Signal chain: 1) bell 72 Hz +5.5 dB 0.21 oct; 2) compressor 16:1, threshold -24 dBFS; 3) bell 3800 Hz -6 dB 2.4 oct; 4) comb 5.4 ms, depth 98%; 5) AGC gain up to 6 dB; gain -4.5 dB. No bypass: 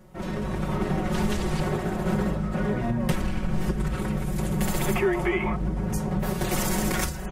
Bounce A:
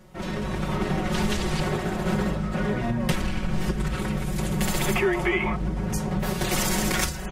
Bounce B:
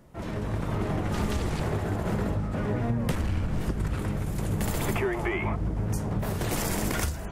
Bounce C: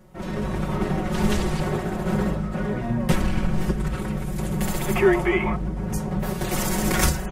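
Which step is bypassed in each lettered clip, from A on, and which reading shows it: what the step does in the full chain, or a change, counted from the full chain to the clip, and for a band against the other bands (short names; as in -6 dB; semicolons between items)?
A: 3, 4 kHz band +5.0 dB; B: 4, 125 Hz band +3.0 dB; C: 2, mean gain reduction 3.0 dB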